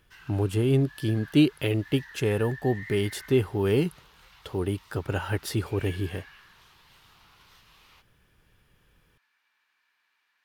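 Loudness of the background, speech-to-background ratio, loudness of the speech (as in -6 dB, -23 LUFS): -47.5 LUFS, 20.5 dB, -27.0 LUFS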